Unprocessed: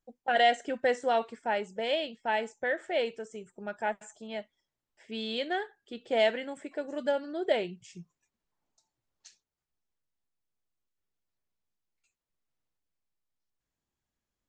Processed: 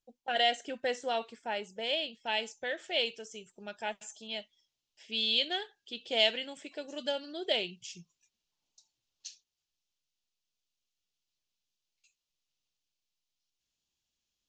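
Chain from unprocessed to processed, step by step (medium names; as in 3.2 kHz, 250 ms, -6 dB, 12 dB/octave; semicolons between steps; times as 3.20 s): high-order bell 4.2 kHz +9 dB, from 2.20 s +15.5 dB; trim -6 dB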